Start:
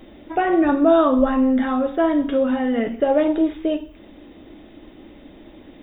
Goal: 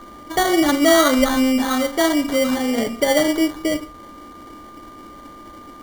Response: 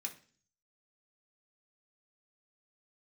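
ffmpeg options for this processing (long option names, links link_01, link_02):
-af "crystalizer=i=4.5:c=0,acrusher=samples=17:mix=1:aa=0.000001,aeval=exprs='val(0)+0.01*sin(2*PI*1200*n/s)':channel_layout=same"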